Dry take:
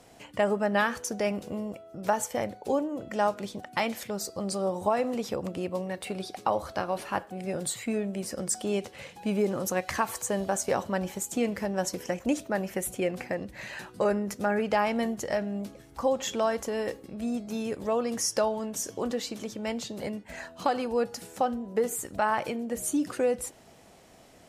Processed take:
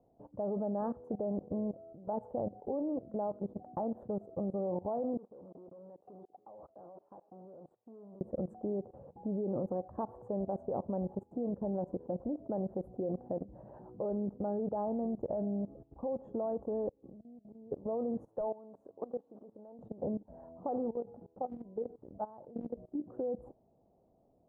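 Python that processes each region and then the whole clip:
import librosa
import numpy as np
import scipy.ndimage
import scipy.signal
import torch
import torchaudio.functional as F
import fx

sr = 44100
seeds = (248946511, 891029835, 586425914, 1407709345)

y = fx.chain(x, sr, fx.level_steps(step_db=20),
    fx.clip_hard(threshold_db=-39.0),
    fx.highpass(hz=560.0, slope=6), at=(5.17, 8.21))
y = fx.chain(y, sr, fx.gate_flip(shuts_db=-27.0, range_db=-25),
    fx.band_squash(depth_pct=100), at=(16.88, 17.72))
y = fx.chain(y, sr, fx.highpass(hz=790.0, slope=6),
    fx.overload_stage(gain_db=26.0), at=(18.28, 19.79))
y = fx.chain(y, sr, fx.lowpass(hz=4100.0, slope=24),
    fx.level_steps(step_db=12), at=(20.9, 23.08))
y = scipy.signal.sosfilt(scipy.signal.cheby2(4, 50, 2000.0, 'lowpass', fs=sr, output='sos'), y)
y = fx.level_steps(y, sr, step_db=18)
y = F.gain(torch.from_numpy(y), 2.0).numpy()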